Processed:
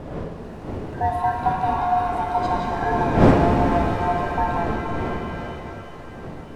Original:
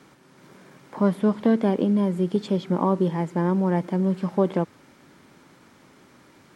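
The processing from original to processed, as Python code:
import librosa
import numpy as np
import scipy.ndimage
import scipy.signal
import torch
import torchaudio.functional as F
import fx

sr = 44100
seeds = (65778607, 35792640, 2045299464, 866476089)

y = fx.band_swap(x, sr, width_hz=500)
y = fx.dmg_wind(y, sr, seeds[0], corner_hz=410.0, level_db=-24.0)
y = fx.rev_shimmer(y, sr, seeds[1], rt60_s=3.6, semitones=7, shimmer_db=-8, drr_db=1.0)
y = F.gain(torch.from_numpy(y), -3.5).numpy()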